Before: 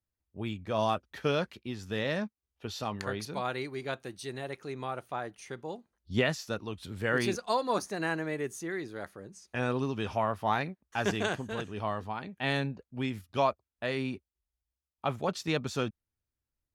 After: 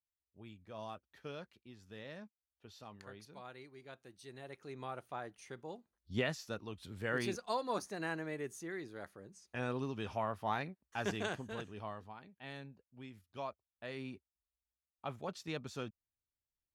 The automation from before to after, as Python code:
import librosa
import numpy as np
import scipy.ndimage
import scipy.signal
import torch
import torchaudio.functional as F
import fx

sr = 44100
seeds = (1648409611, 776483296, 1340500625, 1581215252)

y = fx.gain(x, sr, db=fx.line((3.87, -17.5), (4.84, -7.5), (11.57, -7.5), (12.41, -18.0), (13.13, -18.0), (14.09, -11.0)))